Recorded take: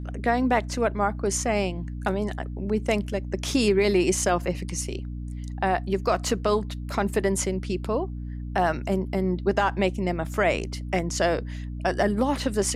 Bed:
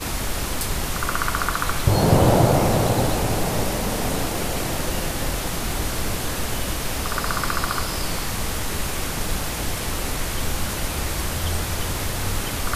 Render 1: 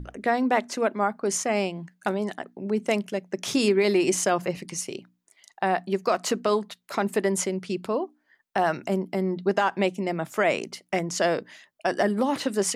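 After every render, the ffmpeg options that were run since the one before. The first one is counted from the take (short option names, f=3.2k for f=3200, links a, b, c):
-af "bandreject=f=60:t=h:w=6,bandreject=f=120:t=h:w=6,bandreject=f=180:t=h:w=6,bandreject=f=240:t=h:w=6,bandreject=f=300:t=h:w=6"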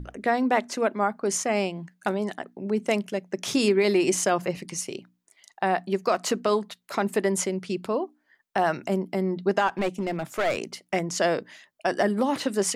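-filter_complex "[0:a]asplit=3[a][b][c];[a]afade=t=out:st=9.67:d=0.02[d];[b]aeval=exprs='clip(val(0),-1,0.0668)':c=same,afade=t=in:st=9.67:d=0.02,afade=t=out:st=10.56:d=0.02[e];[c]afade=t=in:st=10.56:d=0.02[f];[d][e][f]amix=inputs=3:normalize=0"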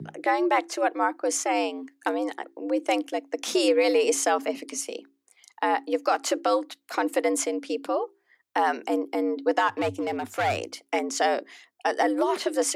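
-af "afreqshift=97"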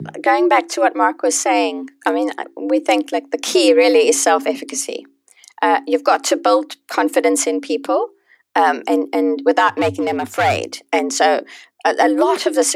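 -af "volume=9.5dB,alimiter=limit=-2dB:level=0:latency=1"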